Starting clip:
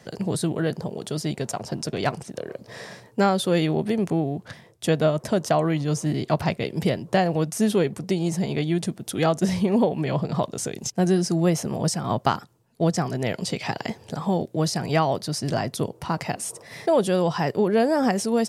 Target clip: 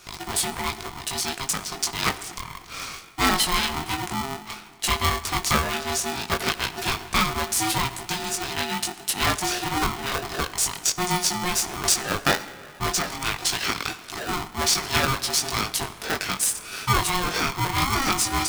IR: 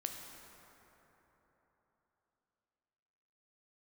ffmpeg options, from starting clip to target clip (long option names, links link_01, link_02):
-filter_complex "[0:a]tiltshelf=frequency=800:gain=-9.5,flanger=delay=19:depth=2.4:speed=0.14,asplit=2[link_01][link_02];[1:a]atrim=start_sample=2205,asetrate=70560,aresample=44100[link_03];[link_02][link_03]afir=irnorm=-1:irlink=0,volume=-2dB[link_04];[link_01][link_04]amix=inputs=2:normalize=0,aeval=exprs='val(0)*sgn(sin(2*PI*540*n/s))':channel_layout=same"